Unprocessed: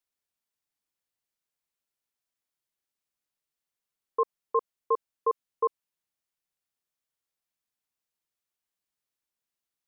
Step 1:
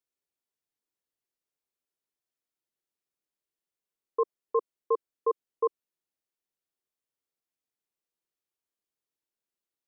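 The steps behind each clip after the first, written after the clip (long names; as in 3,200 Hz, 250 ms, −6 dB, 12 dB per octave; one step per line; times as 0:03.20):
parametric band 380 Hz +8.5 dB 1.2 octaves
level −5.5 dB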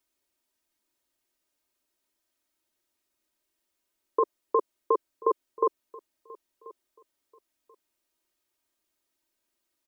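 comb filter 3.2 ms, depth 75%
repeating echo 1,035 ms, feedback 21%, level −21.5 dB
level +9 dB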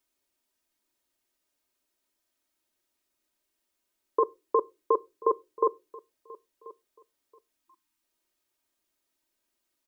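time-frequency box erased 0:07.63–0:08.03, 360–790 Hz
on a send at −19.5 dB: convolution reverb RT60 0.30 s, pre-delay 4 ms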